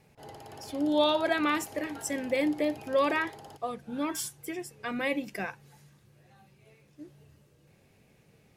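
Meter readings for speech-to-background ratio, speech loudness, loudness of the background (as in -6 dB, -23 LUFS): 17.5 dB, -30.5 LUFS, -48.0 LUFS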